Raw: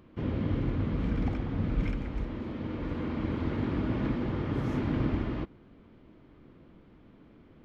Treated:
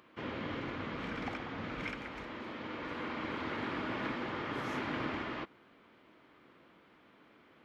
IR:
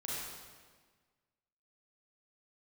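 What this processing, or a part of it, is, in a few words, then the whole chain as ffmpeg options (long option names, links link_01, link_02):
filter by subtraction: -filter_complex "[0:a]asplit=2[link_01][link_02];[link_02]lowpass=1500,volume=-1[link_03];[link_01][link_03]amix=inputs=2:normalize=0,volume=3dB"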